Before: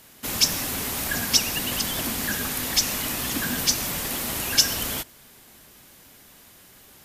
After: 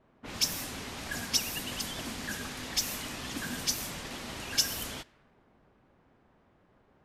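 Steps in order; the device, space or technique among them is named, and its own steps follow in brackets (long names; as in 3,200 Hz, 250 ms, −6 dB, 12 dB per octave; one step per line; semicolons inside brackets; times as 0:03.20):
cassette deck with a dynamic noise filter (white noise bed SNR 24 dB; low-pass that shuts in the quiet parts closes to 880 Hz, open at −21 dBFS)
level −8.5 dB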